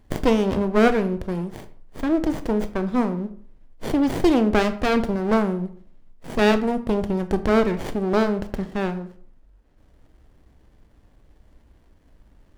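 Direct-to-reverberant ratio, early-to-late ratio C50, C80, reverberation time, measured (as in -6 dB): 10.0 dB, 14.0 dB, 17.5 dB, 0.55 s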